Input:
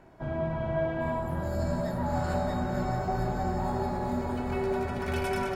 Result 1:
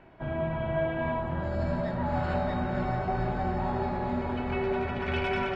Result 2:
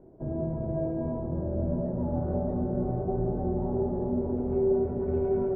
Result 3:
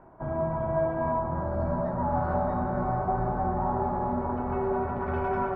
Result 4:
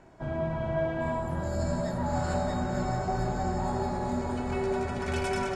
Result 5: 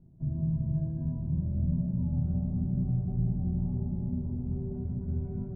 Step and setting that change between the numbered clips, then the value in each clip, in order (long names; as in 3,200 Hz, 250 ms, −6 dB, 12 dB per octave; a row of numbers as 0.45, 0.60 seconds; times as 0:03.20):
low-pass with resonance, frequency: 2,900, 430, 1,100, 7,700, 160 Hertz